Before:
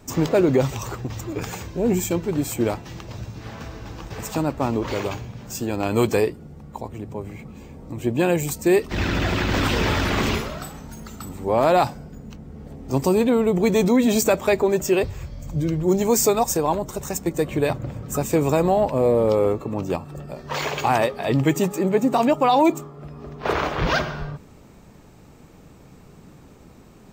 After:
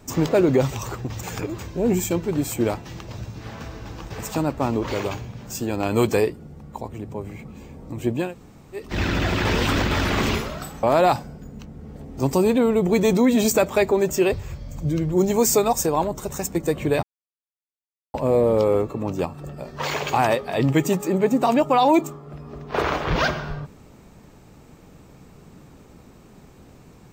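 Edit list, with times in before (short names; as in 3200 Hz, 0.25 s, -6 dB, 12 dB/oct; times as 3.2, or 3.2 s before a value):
1.23–1.59 reverse
8.23–8.84 room tone, crossfade 0.24 s
9.45–9.91 reverse
10.83–11.54 cut
17.74–18.85 mute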